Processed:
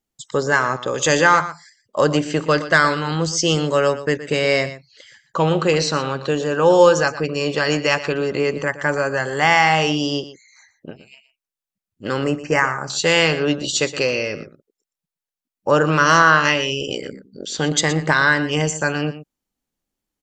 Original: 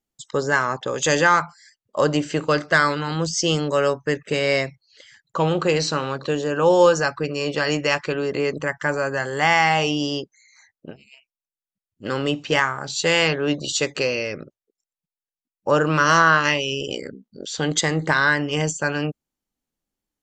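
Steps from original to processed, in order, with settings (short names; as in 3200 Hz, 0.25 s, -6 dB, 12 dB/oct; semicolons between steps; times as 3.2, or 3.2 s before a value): 12.24–12.9 Butterworth band-stop 3600 Hz, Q 1.3; echo 0.119 s -14 dB; gain +2.5 dB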